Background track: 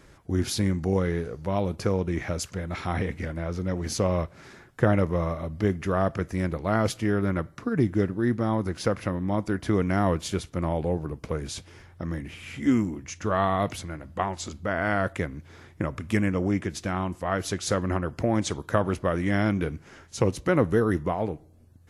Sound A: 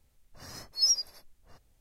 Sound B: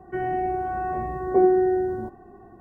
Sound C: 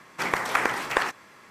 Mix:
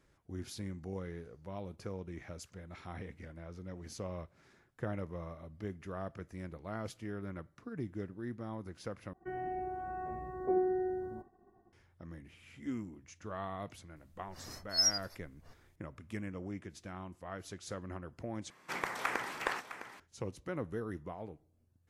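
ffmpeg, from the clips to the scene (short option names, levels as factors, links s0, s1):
-filter_complex "[0:a]volume=0.141[s0];[2:a]agate=range=0.0224:threshold=0.00708:ratio=3:release=100:detection=peak[s1];[3:a]aecho=1:1:658:0.251[s2];[s0]asplit=3[s3][s4][s5];[s3]atrim=end=9.134[s6];[s1]atrim=end=2.6,asetpts=PTS-STARTPTS,volume=0.224[s7];[s4]atrim=start=11.726:end=18.504[s8];[s2]atrim=end=1.5,asetpts=PTS-STARTPTS,volume=0.282[s9];[s5]atrim=start=19.996[s10];[1:a]atrim=end=1.8,asetpts=PTS-STARTPTS,volume=0.631,afade=t=in:d=0.004:c=hsin,afade=t=out:st=1.796:d=0.004:c=hsin,adelay=615636S[s11];[s6][s7]acrossfade=d=0.004:c1=hsin:c2=hsin[s12];[s12][s8]acrossfade=d=0.004:c1=hsin:c2=hsin[s13];[s13][s9]acrossfade=d=0.004:c1=hsin:c2=hsin[s14];[s14][s10]acrossfade=d=0.004:c1=hsin:c2=hsin[s15];[s15][s11]amix=inputs=2:normalize=0"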